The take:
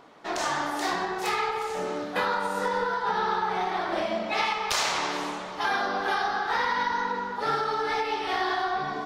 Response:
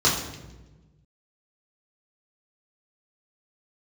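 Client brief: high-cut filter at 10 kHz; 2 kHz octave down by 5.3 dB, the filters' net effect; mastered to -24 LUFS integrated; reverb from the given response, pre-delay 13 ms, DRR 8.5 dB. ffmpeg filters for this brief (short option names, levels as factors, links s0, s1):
-filter_complex "[0:a]lowpass=10000,equalizer=f=2000:t=o:g=-7,asplit=2[s0][s1];[1:a]atrim=start_sample=2205,adelay=13[s2];[s1][s2]afir=irnorm=-1:irlink=0,volume=0.0531[s3];[s0][s3]amix=inputs=2:normalize=0,volume=1.68"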